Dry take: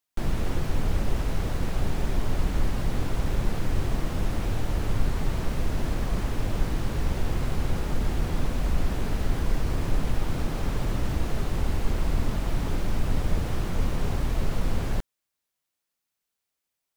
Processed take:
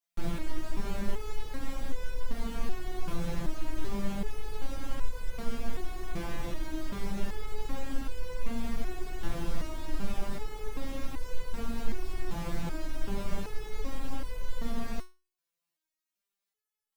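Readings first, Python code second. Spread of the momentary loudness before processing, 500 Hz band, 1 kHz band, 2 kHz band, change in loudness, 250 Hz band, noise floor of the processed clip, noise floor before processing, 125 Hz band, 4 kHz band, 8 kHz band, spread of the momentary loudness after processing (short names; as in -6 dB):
1 LU, -6.0 dB, -6.5 dB, -6.5 dB, -9.5 dB, -6.0 dB, under -85 dBFS, -84 dBFS, -13.0 dB, -6.5 dB, -6.5 dB, 5 LU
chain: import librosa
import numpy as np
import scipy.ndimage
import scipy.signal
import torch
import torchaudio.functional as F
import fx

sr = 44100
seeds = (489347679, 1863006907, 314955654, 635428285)

y = fx.resonator_held(x, sr, hz=2.6, low_hz=170.0, high_hz=500.0)
y = F.gain(torch.from_numpy(y), 7.5).numpy()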